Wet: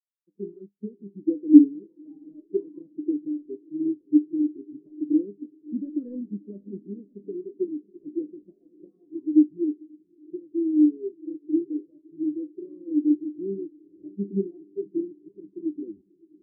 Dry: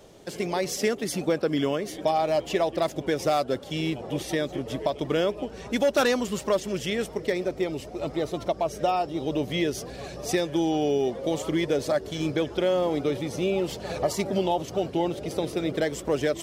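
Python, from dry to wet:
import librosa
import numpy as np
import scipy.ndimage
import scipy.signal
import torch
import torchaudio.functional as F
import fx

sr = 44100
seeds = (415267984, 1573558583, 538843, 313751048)

p1 = fx.tape_stop_end(x, sr, length_s=0.73)
p2 = scipy.signal.sosfilt(scipy.signal.butter(2, 1500.0, 'lowpass', fs=sr, output='sos'), p1)
p3 = fx.low_shelf_res(p2, sr, hz=480.0, db=13.5, q=3.0)
p4 = np.sign(p3) * np.maximum(np.abs(p3) - 10.0 ** (-25.0 / 20.0), 0.0)
p5 = fx.rider(p4, sr, range_db=4, speed_s=2.0)
p6 = fx.comb_fb(p5, sr, f0_hz=100.0, decay_s=0.35, harmonics='all', damping=0.0, mix_pct=80)
p7 = p6 + fx.echo_diffused(p6, sr, ms=578, feedback_pct=76, wet_db=-11.0, dry=0)
p8 = fx.spectral_expand(p7, sr, expansion=2.5)
y = F.gain(torch.from_numpy(p8), 2.5).numpy()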